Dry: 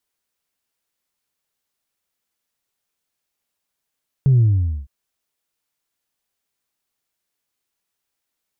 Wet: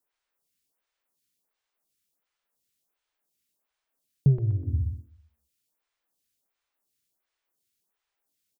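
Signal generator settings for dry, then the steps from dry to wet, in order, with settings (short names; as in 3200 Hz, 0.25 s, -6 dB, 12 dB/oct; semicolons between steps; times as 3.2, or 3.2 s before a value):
sub drop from 140 Hz, over 0.61 s, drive 0 dB, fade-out 0.48 s, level -10.5 dB
on a send: feedback echo 0.124 s, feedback 39%, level -6 dB; on the sum: photocell phaser 1.4 Hz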